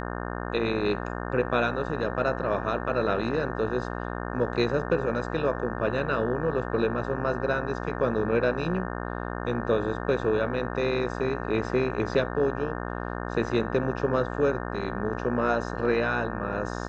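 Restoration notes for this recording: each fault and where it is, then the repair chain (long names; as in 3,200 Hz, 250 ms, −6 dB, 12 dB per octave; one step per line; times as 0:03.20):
mains buzz 60 Hz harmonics 30 −33 dBFS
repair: hum removal 60 Hz, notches 30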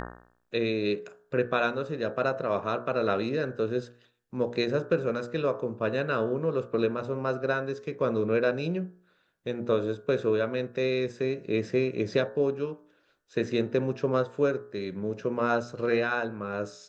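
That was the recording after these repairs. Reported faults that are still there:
none of them is left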